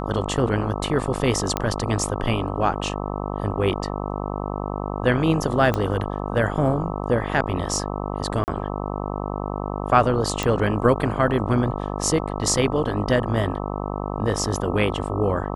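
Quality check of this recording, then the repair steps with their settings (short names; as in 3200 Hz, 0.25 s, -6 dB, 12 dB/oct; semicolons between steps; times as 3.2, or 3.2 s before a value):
buzz 50 Hz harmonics 26 -28 dBFS
1.57 pop -8 dBFS
5.74 pop -10 dBFS
8.44–8.48 gap 39 ms
10.43 pop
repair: de-click; de-hum 50 Hz, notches 26; interpolate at 8.44, 39 ms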